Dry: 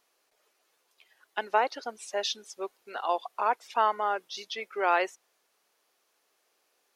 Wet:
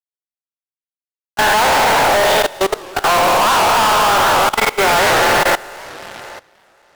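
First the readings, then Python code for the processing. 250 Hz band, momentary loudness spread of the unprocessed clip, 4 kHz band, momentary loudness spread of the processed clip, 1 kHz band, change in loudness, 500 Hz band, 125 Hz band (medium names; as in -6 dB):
+20.0 dB, 12 LU, +20.0 dB, 19 LU, +16.5 dB, +17.5 dB, +16.5 dB, no reading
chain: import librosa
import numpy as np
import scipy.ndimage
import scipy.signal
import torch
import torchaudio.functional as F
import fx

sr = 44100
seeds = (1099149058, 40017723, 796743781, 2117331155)

y = fx.spec_trails(x, sr, decay_s=2.65)
y = scipy.signal.sosfilt(scipy.signal.butter(4, 2500.0, 'lowpass', fs=sr, output='sos'), y)
y = fx.low_shelf(y, sr, hz=130.0, db=-11.5)
y = fx.hum_notches(y, sr, base_hz=50, count=10)
y = fx.rev_spring(y, sr, rt60_s=1.8, pass_ms=(30, 34, 51), chirp_ms=50, drr_db=10.5)
y = fx.fuzz(y, sr, gain_db=43.0, gate_db=-40.0)
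y = fx.echo_feedback(y, sr, ms=528, feedback_pct=26, wet_db=-20.0)
y = np.clip(10.0 ** (18.0 / 20.0) * y, -1.0, 1.0) / 10.0 ** (18.0 / 20.0)
y = fx.level_steps(y, sr, step_db=20)
y = fx.record_warp(y, sr, rpm=78.0, depth_cents=160.0)
y = F.gain(torch.from_numpy(y), 7.5).numpy()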